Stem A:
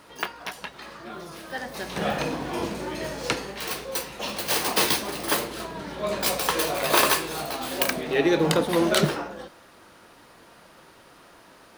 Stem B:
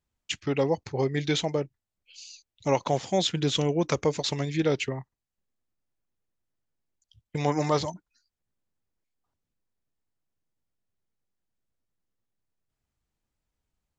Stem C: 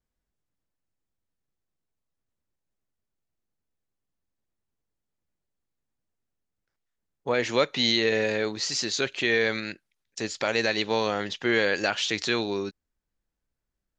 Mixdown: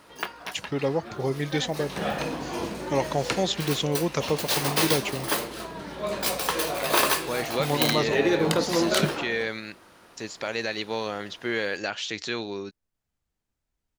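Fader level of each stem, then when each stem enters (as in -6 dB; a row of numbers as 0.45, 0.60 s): -2.0, -1.0, -4.5 dB; 0.00, 0.25, 0.00 s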